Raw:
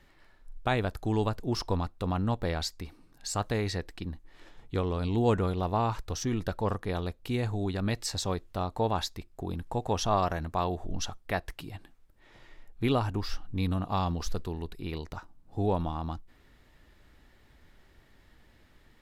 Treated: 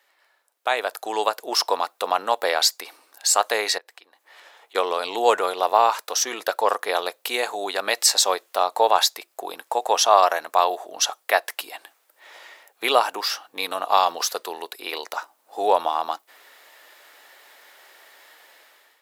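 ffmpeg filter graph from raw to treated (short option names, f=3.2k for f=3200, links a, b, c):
-filter_complex "[0:a]asettb=1/sr,asplit=3[a][b][c];[a]atrim=end=3.784[d];[b]atrim=start=3.78:end=4.75,asetpts=PTS-STARTPTS,afade=t=in:d=0.004:c=qsin,afade=t=out:st=0.966:d=0.004:c=qsin,bass=f=250:g=-14,treble=f=4k:g=-4,acompressor=threshold=-58dB:ratio=4:attack=3.2:release=140:knee=1:detection=peak[e];[c]atrim=start=4.746[f];[d][e]acrossfade=d=0.004:c1=hsin:c2=qsin[g];[g][f]acrossfade=d=0.004:c1=qsin:c2=hsin,highpass=f=530:w=0.5412,highpass=f=530:w=1.3066,highshelf=f=9.3k:g=11,dynaudnorm=f=310:g=5:m=15dB"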